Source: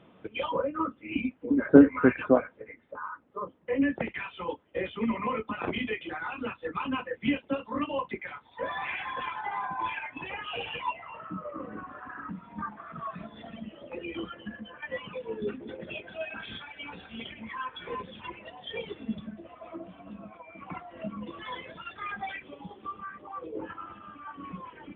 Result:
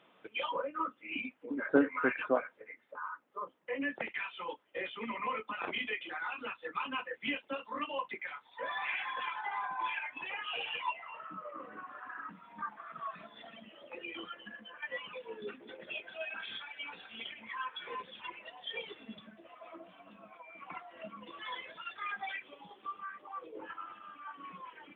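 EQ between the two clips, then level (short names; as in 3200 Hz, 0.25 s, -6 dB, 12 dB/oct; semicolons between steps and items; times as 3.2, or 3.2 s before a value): HPF 1200 Hz 6 dB/oct; 0.0 dB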